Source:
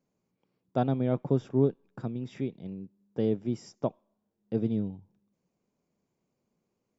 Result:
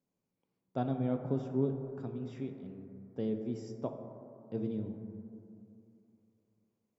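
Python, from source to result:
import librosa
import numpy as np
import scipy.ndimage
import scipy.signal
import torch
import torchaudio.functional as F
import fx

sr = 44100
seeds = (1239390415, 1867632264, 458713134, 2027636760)

y = fx.rev_plate(x, sr, seeds[0], rt60_s=2.8, hf_ratio=0.25, predelay_ms=0, drr_db=5.0)
y = F.gain(torch.from_numpy(y), -8.0).numpy()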